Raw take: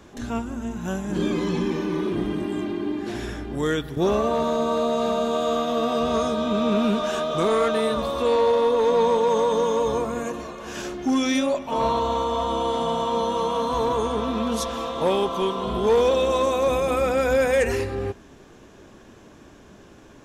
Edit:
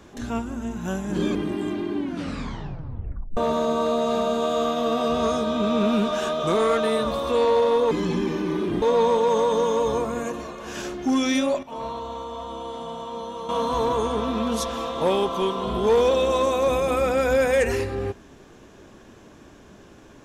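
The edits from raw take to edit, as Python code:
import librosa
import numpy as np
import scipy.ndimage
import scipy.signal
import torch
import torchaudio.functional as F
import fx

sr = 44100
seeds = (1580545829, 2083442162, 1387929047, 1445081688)

y = fx.edit(x, sr, fx.move(start_s=1.35, length_s=0.91, to_s=8.82),
    fx.tape_stop(start_s=2.86, length_s=1.42),
    fx.clip_gain(start_s=11.63, length_s=1.86, db=-9.5), tone=tone)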